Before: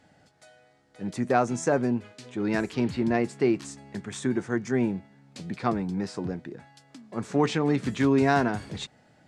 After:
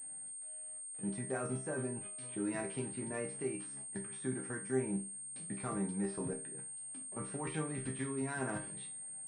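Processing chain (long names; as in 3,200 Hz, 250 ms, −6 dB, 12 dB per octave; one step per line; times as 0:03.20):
output level in coarse steps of 16 dB
resonators tuned to a chord C3 minor, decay 0.33 s
switching amplifier with a slow clock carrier 8,600 Hz
level +10.5 dB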